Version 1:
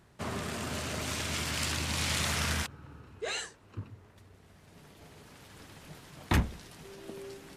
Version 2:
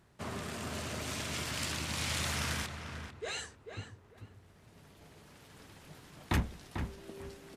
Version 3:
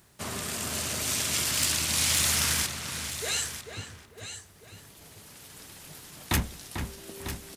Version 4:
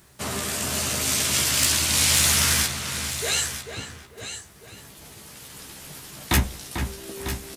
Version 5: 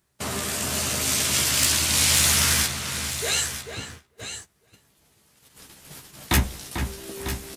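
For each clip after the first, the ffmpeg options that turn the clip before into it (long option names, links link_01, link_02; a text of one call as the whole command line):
ffmpeg -i in.wav -filter_complex "[0:a]asplit=2[link_01][link_02];[link_02]adelay=444,lowpass=frequency=2300:poles=1,volume=-7dB,asplit=2[link_03][link_04];[link_04]adelay=444,lowpass=frequency=2300:poles=1,volume=0.23,asplit=2[link_05][link_06];[link_06]adelay=444,lowpass=frequency=2300:poles=1,volume=0.23[link_07];[link_01][link_03][link_05][link_07]amix=inputs=4:normalize=0,volume=-4dB" out.wav
ffmpeg -i in.wav -af "crystalizer=i=3.5:c=0,asoftclip=type=hard:threshold=-18.5dB,aecho=1:1:948:0.282,volume=2.5dB" out.wav
ffmpeg -i in.wav -filter_complex "[0:a]asplit=2[link_01][link_02];[link_02]adelay=15,volume=-5dB[link_03];[link_01][link_03]amix=inputs=2:normalize=0,volume=4.5dB" out.wav
ffmpeg -i in.wav -af "agate=range=-17dB:threshold=-40dB:ratio=16:detection=peak" out.wav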